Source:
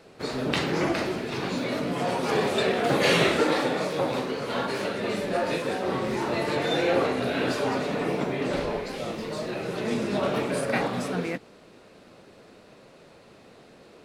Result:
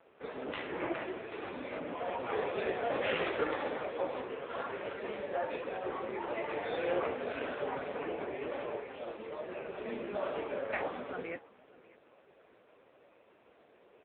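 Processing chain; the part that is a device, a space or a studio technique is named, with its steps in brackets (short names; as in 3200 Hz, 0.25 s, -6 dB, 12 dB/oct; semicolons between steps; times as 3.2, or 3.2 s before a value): satellite phone (BPF 360–3200 Hz; echo 0.592 s -22 dB; gain -5.5 dB; AMR-NB 5.9 kbps 8000 Hz)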